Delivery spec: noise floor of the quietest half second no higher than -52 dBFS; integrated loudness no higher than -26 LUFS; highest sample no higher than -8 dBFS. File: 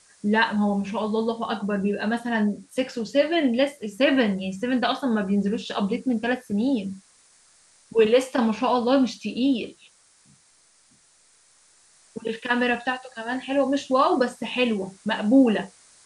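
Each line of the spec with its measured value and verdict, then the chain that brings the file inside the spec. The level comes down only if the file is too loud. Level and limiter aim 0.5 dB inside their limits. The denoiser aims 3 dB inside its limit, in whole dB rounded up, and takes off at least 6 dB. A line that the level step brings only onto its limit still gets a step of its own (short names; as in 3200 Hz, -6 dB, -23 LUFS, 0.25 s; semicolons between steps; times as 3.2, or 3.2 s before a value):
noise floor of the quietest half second -59 dBFS: OK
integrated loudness -24.0 LUFS: fail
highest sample -6.5 dBFS: fail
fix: gain -2.5 dB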